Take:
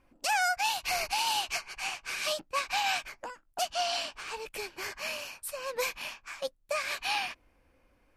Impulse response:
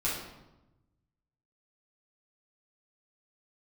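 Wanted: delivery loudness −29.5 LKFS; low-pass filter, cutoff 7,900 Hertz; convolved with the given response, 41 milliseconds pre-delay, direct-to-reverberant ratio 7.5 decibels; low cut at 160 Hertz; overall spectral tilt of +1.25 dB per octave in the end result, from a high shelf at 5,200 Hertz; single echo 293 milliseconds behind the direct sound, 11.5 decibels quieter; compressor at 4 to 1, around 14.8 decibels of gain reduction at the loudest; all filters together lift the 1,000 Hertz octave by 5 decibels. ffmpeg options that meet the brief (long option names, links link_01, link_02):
-filter_complex "[0:a]highpass=160,lowpass=7900,equalizer=frequency=1000:width_type=o:gain=6.5,highshelf=frequency=5200:gain=6.5,acompressor=threshold=-39dB:ratio=4,aecho=1:1:293:0.266,asplit=2[link_01][link_02];[1:a]atrim=start_sample=2205,adelay=41[link_03];[link_02][link_03]afir=irnorm=-1:irlink=0,volume=-15dB[link_04];[link_01][link_04]amix=inputs=2:normalize=0,volume=10dB"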